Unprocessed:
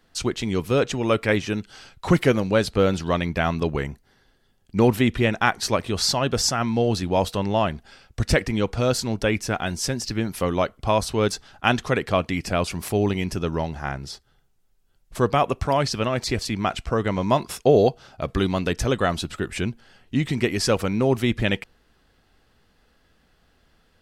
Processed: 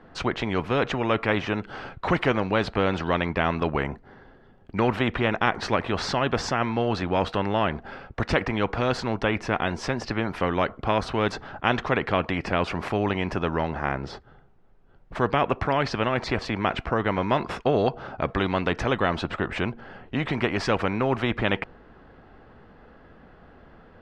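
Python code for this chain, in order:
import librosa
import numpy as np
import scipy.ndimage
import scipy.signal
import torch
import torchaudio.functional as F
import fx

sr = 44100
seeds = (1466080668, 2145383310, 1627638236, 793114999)

y = scipy.signal.sosfilt(scipy.signal.butter(2, 1300.0, 'lowpass', fs=sr, output='sos'), x)
y = fx.low_shelf(y, sr, hz=92.0, db=-8.5)
y = fx.spectral_comp(y, sr, ratio=2.0)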